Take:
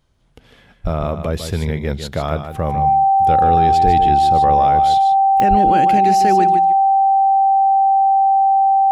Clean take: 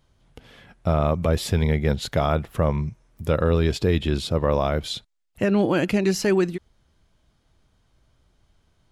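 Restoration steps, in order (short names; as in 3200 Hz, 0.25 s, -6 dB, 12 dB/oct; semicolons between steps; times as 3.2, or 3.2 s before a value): de-click; notch 780 Hz, Q 30; 0.83–0.95 HPF 140 Hz 24 dB/oct; 3.84–3.96 HPF 140 Hz 24 dB/oct; 5.49–5.61 HPF 140 Hz 24 dB/oct; inverse comb 0.15 s -9 dB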